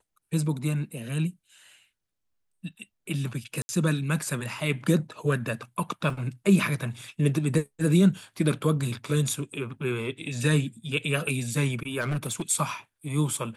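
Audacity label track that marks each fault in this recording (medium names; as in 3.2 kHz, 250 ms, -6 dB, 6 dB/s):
3.620000	3.690000	dropout 70 ms
6.100000	6.100000	dropout 3 ms
12.000000	12.420000	clipped -24.5 dBFS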